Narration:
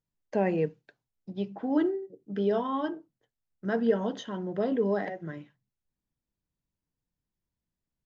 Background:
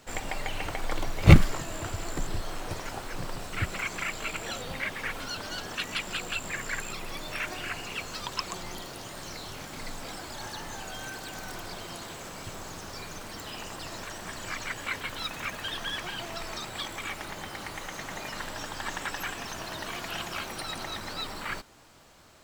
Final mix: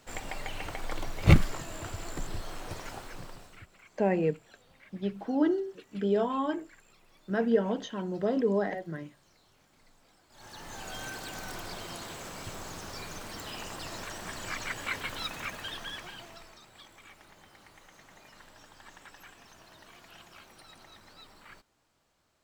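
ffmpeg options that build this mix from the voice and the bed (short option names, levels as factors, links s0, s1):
-filter_complex "[0:a]adelay=3650,volume=1[s0];[1:a]volume=8.91,afade=t=out:st=2.91:d=0.75:silence=0.1,afade=t=in:st=10.29:d=0.66:silence=0.0668344,afade=t=out:st=15.13:d=1.43:silence=0.149624[s1];[s0][s1]amix=inputs=2:normalize=0"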